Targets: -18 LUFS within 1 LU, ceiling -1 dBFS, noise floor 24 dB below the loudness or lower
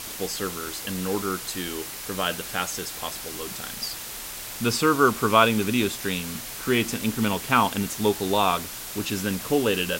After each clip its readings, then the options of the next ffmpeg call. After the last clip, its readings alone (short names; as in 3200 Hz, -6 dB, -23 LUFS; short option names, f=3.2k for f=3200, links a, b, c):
noise floor -36 dBFS; noise floor target -49 dBFS; loudness -25.0 LUFS; peak -3.5 dBFS; loudness target -18.0 LUFS
-> -af "afftdn=nr=13:nf=-36"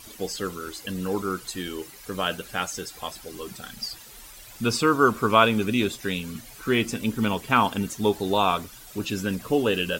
noise floor -46 dBFS; noise floor target -50 dBFS
-> -af "afftdn=nr=6:nf=-46"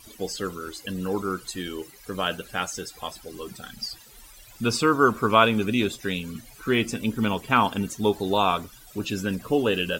noise floor -49 dBFS; noise floor target -50 dBFS
-> -af "afftdn=nr=6:nf=-49"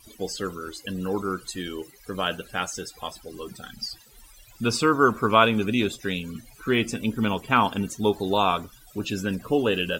noise floor -52 dBFS; loudness -25.5 LUFS; peak -3.5 dBFS; loudness target -18.0 LUFS
-> -af "volume=7.5dB,alimiter=limit=-1dB:level=0:latency=1"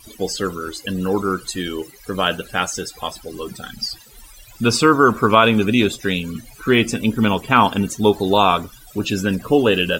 loudness -18.5 LUFS; peak -1.0 dBFS; noise floor -45 dBFS